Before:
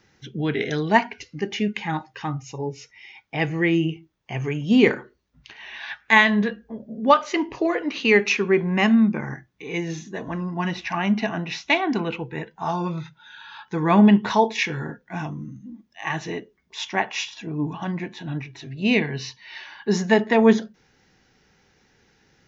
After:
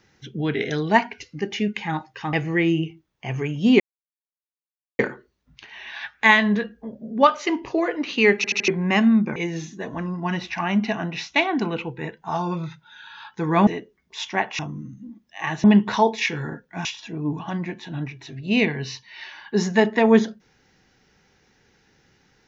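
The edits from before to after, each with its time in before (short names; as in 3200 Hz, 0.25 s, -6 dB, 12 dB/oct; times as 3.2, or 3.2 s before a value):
2.33–3.39 cut
4.86 insert silence 1.19 s
8.23 stutter in place 0.08 s, 4 plays
9.23–9.7 cut
14.01–15.22 swap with 16.27–17.19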